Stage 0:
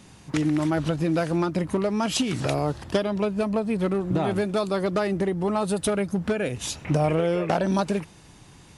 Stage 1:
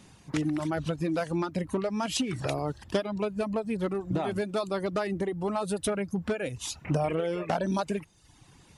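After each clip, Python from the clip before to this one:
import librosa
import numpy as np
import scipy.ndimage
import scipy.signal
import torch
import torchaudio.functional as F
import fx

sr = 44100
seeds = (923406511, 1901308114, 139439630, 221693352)

y = fx.dereverb_blind(x, sr, rt60_s=0.78)
y = y * librosa.db_to_amplitude(-4.0)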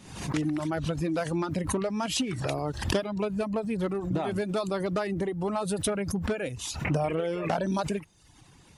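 y = fx.pre_swell(x, sr, db_per_s=75.0)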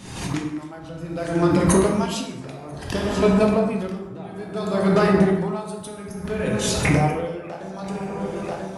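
y = x + 10.0 ** (-14.5 / 20.0) * np.pad(x, (int(989 * sr / 1000.0), 0))[:len(x)]
y = fx.rev_plate(y, sr, seeds[0], rt60_s=1.8, hf_ratio=0.45, predelay_ms=0, drr_db=-1.5)
y = y * 10.0 ** (-19 * (0.5 - 0.5 * np.cos(2.0 * np.pi * 0.59 * np.arange(len(y)) / sr)) / 20.0)
y = y * librosa.db_to_amplitude(8.5)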